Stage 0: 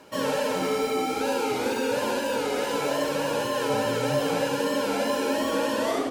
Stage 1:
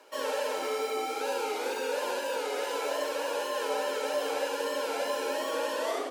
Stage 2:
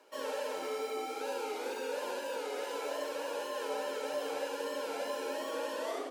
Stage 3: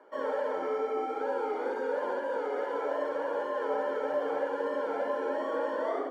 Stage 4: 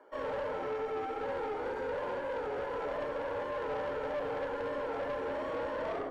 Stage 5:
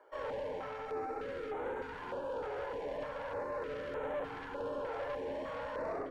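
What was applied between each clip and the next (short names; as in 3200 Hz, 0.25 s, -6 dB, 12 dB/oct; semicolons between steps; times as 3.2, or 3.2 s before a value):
HPF 370 Hz 24 dB/oct; gain -4.5 dB
low shelf 280 Hz +7 dB; gain -7 dB
polynomial smoothing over 41 samples; gain +6 dB
tube stage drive 31 dB, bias 0.45
stepped notch 3.3 Hz 230–4900 Hz; gain -2 dB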